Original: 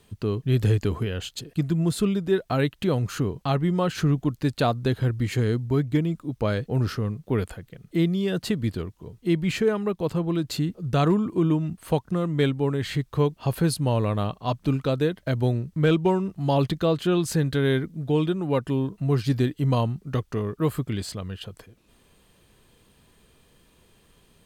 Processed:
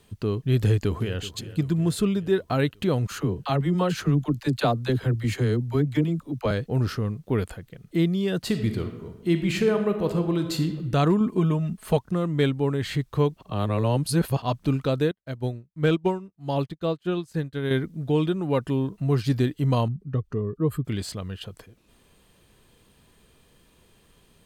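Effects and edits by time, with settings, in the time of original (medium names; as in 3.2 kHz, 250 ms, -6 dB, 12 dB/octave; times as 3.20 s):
0.58–1.19 s: echo throw 380 ms, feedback 60%, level -15.5 dB
3.07–6.51 s: phase dispersion lows, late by 45 ms, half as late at 460 Hz
8.40–10.67 s: reverb throw, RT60 1.1 s, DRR 6 dB
11.20–11.97 s: comb 4.7 ms, depth 68%
13.41–14.42 s: reverse
15.11–17.71 s: upward expansion 2.5:1, over -41 dBFS
19.88–20.85 s: spectral contrast enhancement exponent 1.5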